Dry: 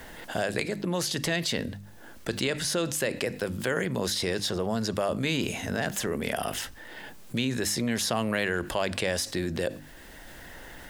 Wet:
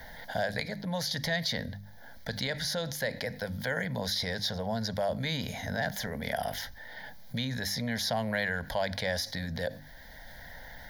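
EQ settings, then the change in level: fixed phaser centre 1800 Hz, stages 8; 0.0 dB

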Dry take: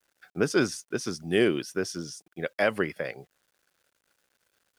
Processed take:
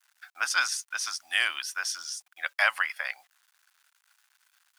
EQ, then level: inverse Chebyshev high-pass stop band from 450 Hz, stop band 40 dB; +6.0 dB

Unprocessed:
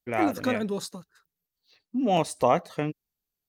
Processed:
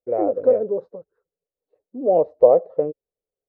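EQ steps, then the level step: synth low-pass 520 Hz, resonance Q 4.9; air absorption 92 m; resonant low shelf 320 Hz -7 dB, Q 1.5; 0.0 dB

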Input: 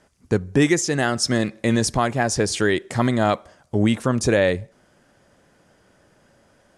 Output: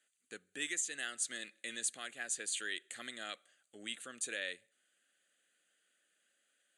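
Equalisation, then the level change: speaker cabinet 270–8500 Hz, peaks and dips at 400 Hz -4 dB, 630 Hz -4 dB, 2200 Hz -6 dB; differentiator; fixed phaser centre 2300 Hz, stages 4; 0.0 dB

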